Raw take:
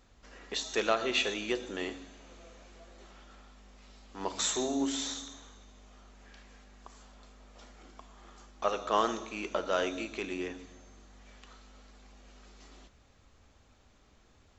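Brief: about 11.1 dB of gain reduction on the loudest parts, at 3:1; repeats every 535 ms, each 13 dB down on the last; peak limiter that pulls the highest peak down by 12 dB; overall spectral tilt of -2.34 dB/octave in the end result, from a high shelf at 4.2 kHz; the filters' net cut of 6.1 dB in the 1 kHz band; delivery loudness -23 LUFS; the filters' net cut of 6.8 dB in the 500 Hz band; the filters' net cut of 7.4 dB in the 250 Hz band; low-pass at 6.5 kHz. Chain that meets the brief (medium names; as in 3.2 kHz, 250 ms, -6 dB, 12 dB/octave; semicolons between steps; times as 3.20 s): low-pass 6.5 kHz; peaking EQ 250 Hz -7 dB; peaking EQ 500 Hz -5 dB; peaking EQ 1 kHz -6.5 dB; treble shelf 4.2 kHz +3.5 dB; compression 3:1, threshold -40 dBFS; peak limiter -36.5 dBFS; feedback delay 535 ms, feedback 22%, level -13 dB; trim +26.5 dB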